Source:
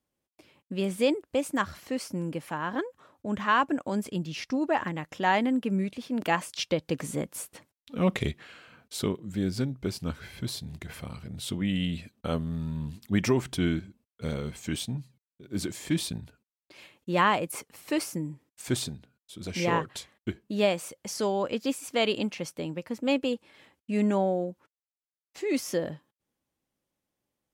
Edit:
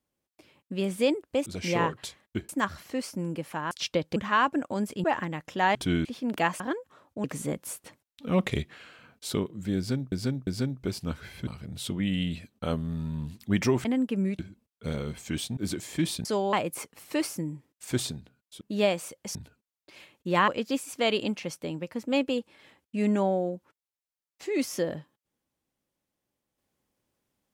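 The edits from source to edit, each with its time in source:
0:02.68–0:03.32: swap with 0:06.48–0:06.93
0:04.20–0:04.68: remove
0:05.39–0:05.93: swap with 0:13.47–0:13.77
0:09.46–0:09.81: repeat, 3 plays
0:10.46–0:11.09: remove
0:14.95–0:15.49: remove
0:16.17–0:17.30: swap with 0:21.15–0:21.43
0:19.38–0:20.41: move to 0:01.46

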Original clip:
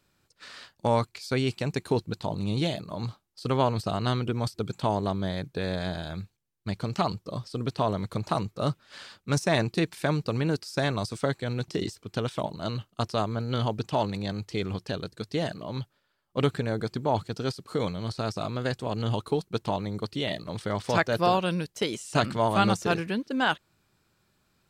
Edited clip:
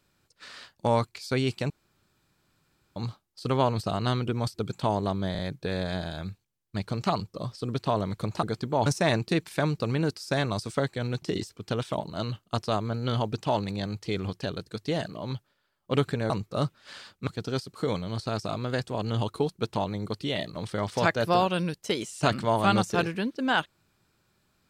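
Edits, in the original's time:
0:01.70–0:02.96: fill with room tone
0:05.31: stutter 0.04 s, 3 plays
0:08.35–0:09.32: swap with 0:16.76–0:17.19

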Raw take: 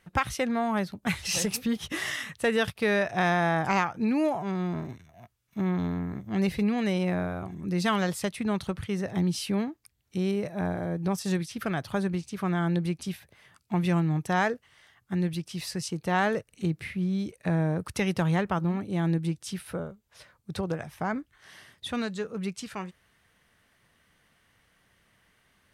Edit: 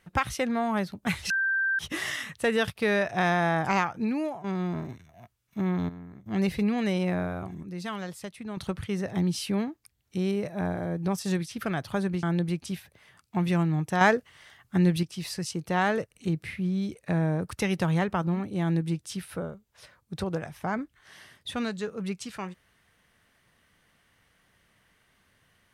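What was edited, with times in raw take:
0:01.30–0:01.79: beep over 1,570 Hz −23 dBFS
0:03.93–0:04.44: fade out, to −11 dB
0:05.89–0:06.26: clip gain −11.5 dB
0:07.63–0:08.57: clip gain −9 dB
0:12.23–0:12.60: remove
0:14.38–0:15.40: clip gain +5.5 dB

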